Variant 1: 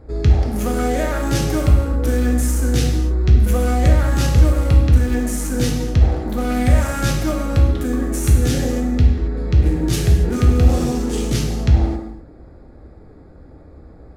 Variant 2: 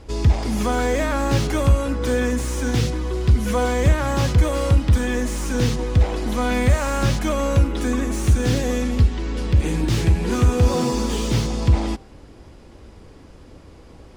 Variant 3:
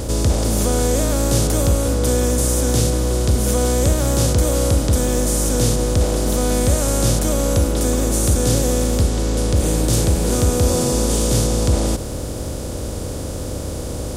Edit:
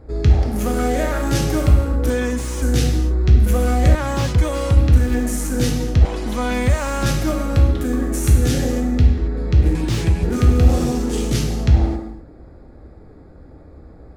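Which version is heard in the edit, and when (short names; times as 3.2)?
1
2.1–2.62 from 2
3.95–4.77 from 2
6.05–7.06 from 2
9.75–10.23 from 2
not used: 3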